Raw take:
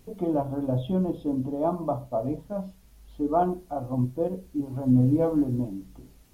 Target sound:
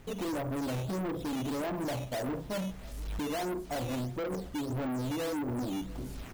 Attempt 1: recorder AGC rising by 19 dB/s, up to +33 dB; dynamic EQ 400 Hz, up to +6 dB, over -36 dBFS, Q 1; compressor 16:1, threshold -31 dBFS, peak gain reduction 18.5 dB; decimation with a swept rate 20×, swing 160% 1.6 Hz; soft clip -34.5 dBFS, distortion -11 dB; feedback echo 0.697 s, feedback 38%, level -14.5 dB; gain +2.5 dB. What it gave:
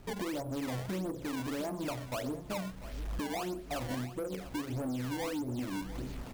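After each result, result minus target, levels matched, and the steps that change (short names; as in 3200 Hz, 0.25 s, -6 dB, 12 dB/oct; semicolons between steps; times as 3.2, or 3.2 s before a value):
compressor: peak gain reduction +9.5 dB; decimation with a swept rate: distortion +9 dB; echo-to-direct +6.5 dB
change: compressor 16:1, threshold -21 dBFS, peak gain reduction 9 dB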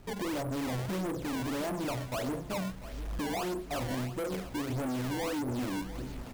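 decimation with a swept rate: distortion +9 dB; echo-to-direct +6.5 dB
change: decimation with a swept rate 8×, swing 160% 1.6 Hz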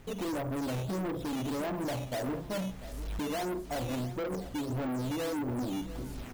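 echo-to-direct +6.5 dB
change: feedback echo 0.697 s, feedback 38%, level -21 dB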